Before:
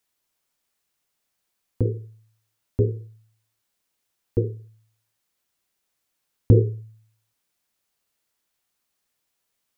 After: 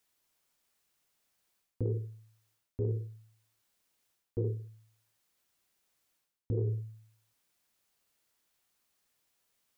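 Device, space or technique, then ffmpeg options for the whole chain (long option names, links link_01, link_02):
compression on the reversed sound: -af "areverse,acompressor=threshold=-29dB:ratio=16,areverse"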